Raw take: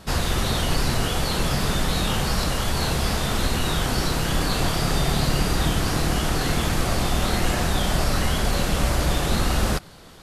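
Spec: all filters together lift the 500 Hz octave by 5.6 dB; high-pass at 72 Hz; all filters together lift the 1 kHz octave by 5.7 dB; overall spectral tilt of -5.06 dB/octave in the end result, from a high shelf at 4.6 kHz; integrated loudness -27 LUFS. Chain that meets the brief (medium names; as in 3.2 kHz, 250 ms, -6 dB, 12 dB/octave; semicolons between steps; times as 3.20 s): high-pass 72 Hz; peaking EQ 500 Hz +5.5 dB; peaking EQ 1 kHz +6 dB; treble shelf 4.6 kHz -7.5 dB; trim -4.5 dB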